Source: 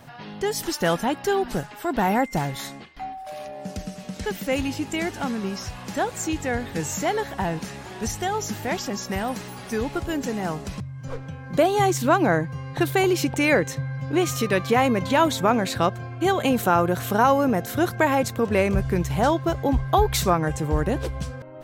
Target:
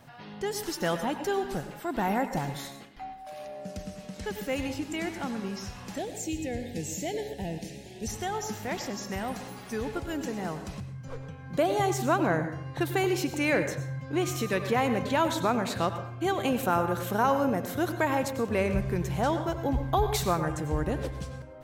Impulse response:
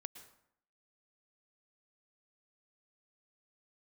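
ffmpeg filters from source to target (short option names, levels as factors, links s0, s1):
-filter_complex "[0:a]asettb=1/sr,asplit=3[s0][s1][s2];[s0]atrim=end=5.984[s3];[s1]atrim=start=5.98:end=8.08,asetpts=PTS-STARTPTS,afade=t=in:d=0.004:c=qsin,afade=t=out:st=2.096:d=0.004:c=qsin,asuperstop=centerf=1200:order=4:qfactor=0.77[s4];[s2]atrim=start=8.076[s5];[s3][s4]acrossfade=d=0.004:c1=hsin:c2=qsin[s6];[s6][s5]acrossfade=d=0.004:c1=qsin:c2=hsin[s7];[1:a]atrim=start_sample=2205,asetrate=52920,aresample=44100[s8];[s7][s8]afir=irnorm=-1:irlink=0"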